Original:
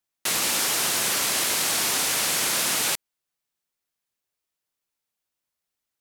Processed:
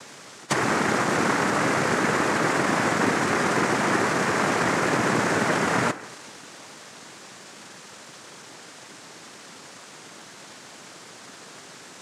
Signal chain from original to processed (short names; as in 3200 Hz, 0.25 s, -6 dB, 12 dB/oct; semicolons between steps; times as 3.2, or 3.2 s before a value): per-bin compression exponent 0.4; reverb, pre-delay 3 ms, DRR 12.5 dB; speed mistake 15 ips tape played at 7.5 ips; treble ducked by the level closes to 1300 Hz, closed at -20 dBFS; high shelf 2100 Hz -7.5 dB; noise vocoder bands 3; HPF 150 Hz 12 dB/oct; low shelf 320 Hz +4 dB; gain +4.5 dB